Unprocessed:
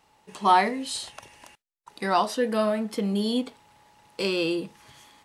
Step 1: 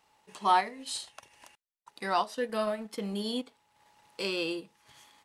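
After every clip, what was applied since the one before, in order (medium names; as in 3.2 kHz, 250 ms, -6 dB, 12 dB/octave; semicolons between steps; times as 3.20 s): bass shelf 430 Hz -6.5 dB; transient shaper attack -1 dB, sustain -8 dB; trim -3.5 dB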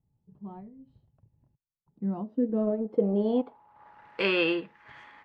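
dynamic bell 3.1 kHz, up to +6 dB, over -50 dBFS, Q 1.6; low-pass sweep 130 Hz -> 1.8 kHz, 1.69–4.17 s; trim +6.5 dB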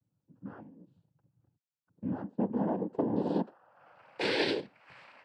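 noise-vocoded speech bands 8; trim -4 dB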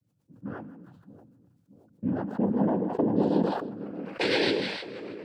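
rotary cabinet horn 8 Hz; two-band feedback delay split 710 Hz, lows 626 ms, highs 159 ms, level -13.5 dB; decay stretcher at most 46 dB/s; trim +6.5 dB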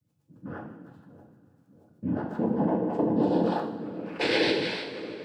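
two-slope reverb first 0.55 s, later 3 s, from -16 dB, DRR 1 dB; trim -1.5 dB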